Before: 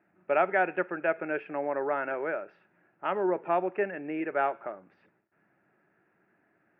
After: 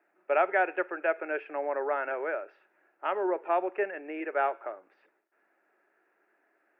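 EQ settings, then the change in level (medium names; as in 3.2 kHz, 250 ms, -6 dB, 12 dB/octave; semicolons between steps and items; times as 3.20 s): high-pass 350 Hz 24 dB/octave; 0.0 dB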